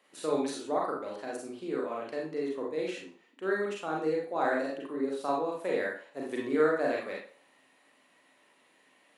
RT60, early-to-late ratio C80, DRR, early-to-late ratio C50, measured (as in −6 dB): 0.45 s, 8.0 dB, −3.0 dB, 3.0 dB